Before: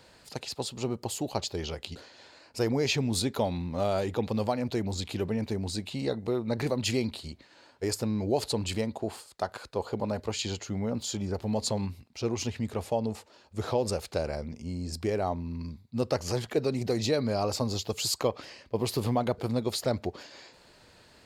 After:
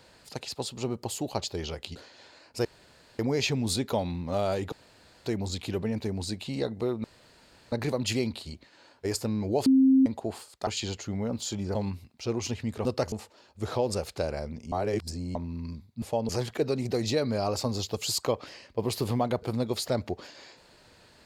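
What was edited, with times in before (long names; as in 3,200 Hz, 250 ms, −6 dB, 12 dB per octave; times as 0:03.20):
0:02.65: splice in room tone 0.54 s
0:04.18–0:04.72: fill with room tone
0:06.50: splice in room tone 0.68 s
0:08.44–0:08.84: beep over 265 Hz −16 dBFS
0:09.45–0:10.29: remove
0:11.37–0:11.71: remove
0:12.81–0:13.08: swap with 0:15.98–0:16.25
0:14.68–0:15.31: reverse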